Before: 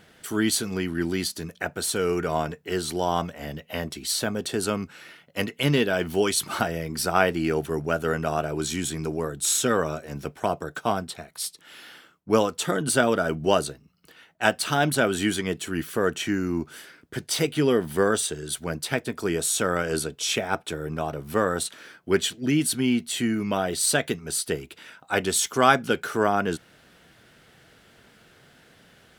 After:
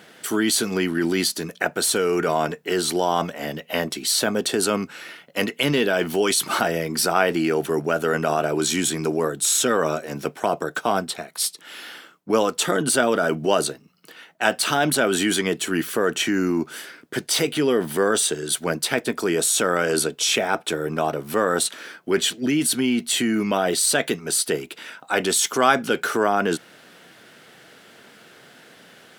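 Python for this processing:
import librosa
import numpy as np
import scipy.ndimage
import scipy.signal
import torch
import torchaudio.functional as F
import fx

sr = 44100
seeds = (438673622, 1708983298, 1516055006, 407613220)

p1 = scipy.signal.sosfilt(scipy.signal.butter(2, 210.0, 'highpass', fs=sr, output='sos'), x)
p2 = fx.over_compress(p1, sr, threshold_db=-28.0, ratio=-1.0)
y = p1 + (p2 * 10.0 ** (-0.5 / 20.0))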